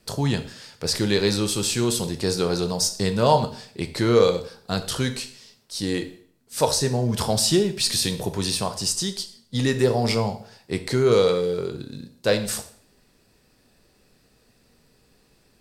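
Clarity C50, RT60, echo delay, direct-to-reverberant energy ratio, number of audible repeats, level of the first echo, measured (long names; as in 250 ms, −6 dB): 12.5 dB, 0.55 s, no echo audible, 8.0 dB, no echo audible, no echo audible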